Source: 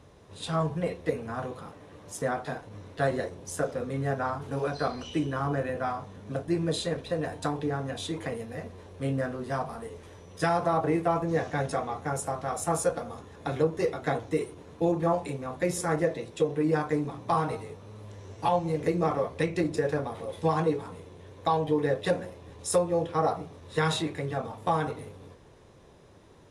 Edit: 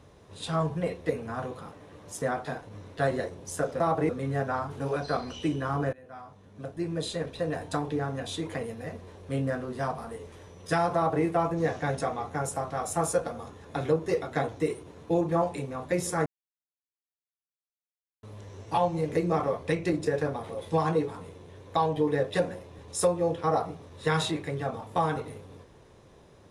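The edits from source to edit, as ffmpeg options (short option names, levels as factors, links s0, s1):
-filter_complex "[0:a]asplit=6[s0][s1][s2][s3][s4][s5];[s0]atrim=end=3.802[s6];[s1]atrim=start=10.658:end=10.952[s7];[s2]atrim=start=3.798:end=5.64,asetpts=PTS-STARTPTS,afade=t=out:st=1.838:d=0.004:c=hsin:silence=0.0668344[s8];[s3]atrim=start=5.64:end=15.97,asetpts=PTS-STARTPTS,afade=t=in:d=1.59:silence=0.0668344,afade=t=out:st=10.326:d=0.004:c=hsin[s9];[s4]atrim=start=15.97:end=17.94,asetpts=PTS-STARTPTS,volume=0[s10];[s5]atrim=start=17.94,asetpts=PTS-STARTPTS,afade=t=in:d=0.004:c=hsin[s11];[s6][s7]acrossfade=d=0.004:c1=hsin:c2=hsin[s12];[s8][s9][s10][s11]concat=n=4:v=0:a=1[s13];[s12][s13]acrossfade=d=0.004:c1=hsin:c2=hsin"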